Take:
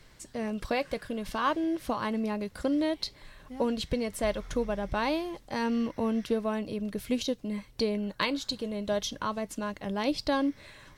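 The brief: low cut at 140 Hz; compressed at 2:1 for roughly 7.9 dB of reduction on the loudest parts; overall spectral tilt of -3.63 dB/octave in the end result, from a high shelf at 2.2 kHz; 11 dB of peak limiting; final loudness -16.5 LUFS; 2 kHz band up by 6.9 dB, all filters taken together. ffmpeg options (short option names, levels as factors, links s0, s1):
-af "highpass=140,equalizer=f=2000:t=o:g=6,highshelf=f=2200:g=5,acompressor=threshold=0.02:ratio=2,volume=9.44,alimiter=limit=0.562:level=0:latency=1"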